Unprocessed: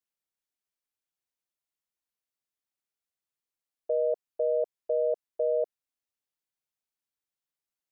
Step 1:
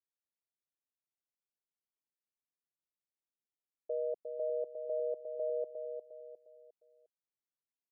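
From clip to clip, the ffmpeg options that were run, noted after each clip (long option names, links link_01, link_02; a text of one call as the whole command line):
ffmpeg -i in.wav -filter_complex "[0:a]bandpass=frequency=290:width_type=q:width=0.62:csg=0,asplit=2[link_01][link_02];[link_02]aecho=0:1:355|710|1065|1420:0.473|0.175|0.0648|0.024[link_03];[link_01][link_03]amix=inputs=2:normalize=0,volume=-6.5dB" out.wav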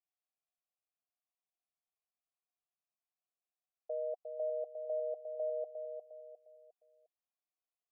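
ffmpeg -i in.wav -filter_complex "[0:a]asplit=3[link_01][link_02][link_03];[link_01]bandpass=frequency=730:width_type=q:width=8,volume=0dB[link_04];[link_02]bandpass=frequency=1090:width_type=q:width=8,volume=-6dB[link_05];[link_03]bandpass=frequency=2440:width_type=q:width=8,volume=-9dB[link_06];[link_04][link_05][link_06]amix=inputs=3:normalize=0,volume=8dB" out.wav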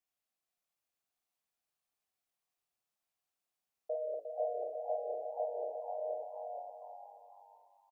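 ffmpeg -i in.wav -filter_complex "[0:a]asplit=2[link_01][link_02];[link_02]aecho=0:1:51|494|586:0.531|0.211|0.398[link_03];[link_01][link_03]amix=inputs=2:normalize=0,flanger=delay=9:depth=10:regen=-65:speed=2:shape=sinusoidal,asplit=2[link_04][link_05];[link_05]asplit=4[link_06][link_07][link_08][link_09];[link_06]adelay=480,afreqshift=97,volume=-6.5dB[link_10];[link_07]adelay=960,afreqshift=194,volume=-16.7dB[link_11];[link_08]adelay=1440,afreqshift=291,volume=-26.8dB[link_12];[link_09]adelay=1920,afreqshift=388,volume=-37dB[link_13];[link_10][link_11][link_12][link_13]amix=inputs=4:normalize=0[link_14];[link_04][link_14]amix=inputs=2:normalize=0,volume=7dB" out.wav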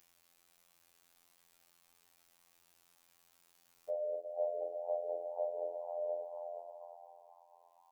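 ffmpeg -i in.wav -af "bandreject=frequency=670:width=12,acompressor=mode=upward:threshold=-55dB:ratio=2.5,afftfilt=real='hypot(re,im)*cos(PI*b)':imag='0':win_size=2048:overlap=0.75,volume=5dB" out.wav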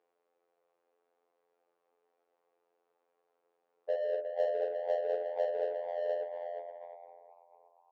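ffmpeg -i in.wav -af "highpass=frequency=460:width_type=q:width=4.9,adynamicsmooth=sensitivity=5.5:basefreq=1000,bandreject=frequency=60:width_type=h:width=6,bandreject=frequency=120:width_type=h:width=6,bandreject=frequency=180:width_type=h:width=6,bandreject=frequency=240:width_type=h:width=6,bandreject=frequency=300:width_type=h:width=6,bandreject=frequency=360:width_type=h:width=6,bandreject=frequency=420:width_type=h:width=6,bandreject=frequency=480:width_type=h:width=6,bandreject=frequency=540:width_type=h:width=6,bandreject=frequency=600:width_type=h:width=6" out.wav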